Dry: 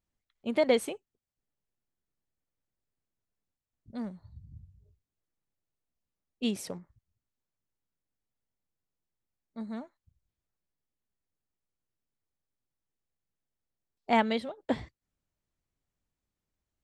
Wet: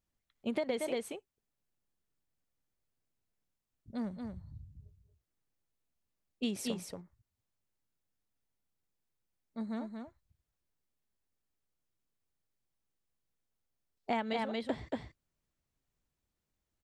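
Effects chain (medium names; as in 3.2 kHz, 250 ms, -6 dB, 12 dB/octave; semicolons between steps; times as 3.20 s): on a send: delay 231 ms -6 dB; on the sum: compression 10:1, threshold -30 dBFS, peak gain reduction 11.5 dB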